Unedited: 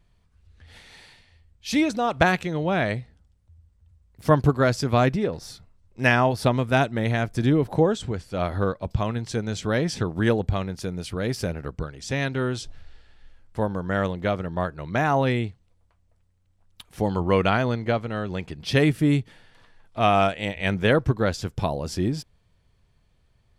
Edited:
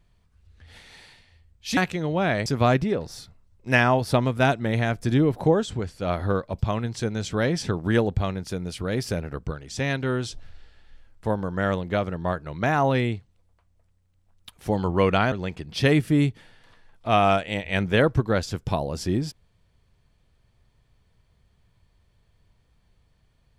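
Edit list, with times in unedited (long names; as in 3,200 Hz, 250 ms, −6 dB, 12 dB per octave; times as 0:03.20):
0:01.77–0:02.28: remove
0:02.97–0:04.78: remove
0:17.64–0:18.23: remove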